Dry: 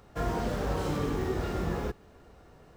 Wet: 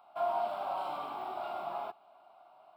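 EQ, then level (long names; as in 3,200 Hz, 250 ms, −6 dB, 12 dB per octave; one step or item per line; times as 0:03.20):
high-pass with resonance 660 Hz, resonance Q 5.6
high-shelf EQ 4,900 Hz −9 dB
phaser with its sweep stopped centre 1,800 Hz, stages 6
−3.0 dB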